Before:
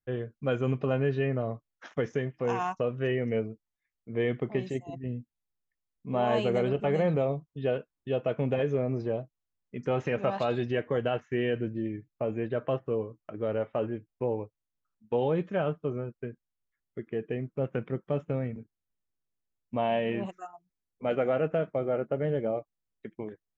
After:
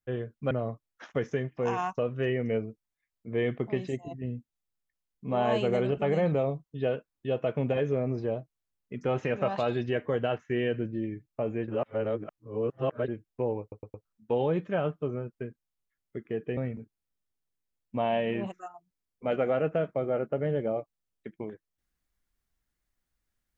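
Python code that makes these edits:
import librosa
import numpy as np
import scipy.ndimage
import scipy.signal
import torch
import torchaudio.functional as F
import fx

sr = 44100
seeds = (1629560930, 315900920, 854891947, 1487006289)

y = fx.edit(x, sr, fx.cut(start_s=0.51, length_s=0.82),
    fx.reverse_span(start_s=12.5, length_s=1.4),
    fx.stutter_over(start_s=14.43, slice_s=0.11, count=4),
    fx.cut(start_s=17.39, length_s=0.97), tone=tone)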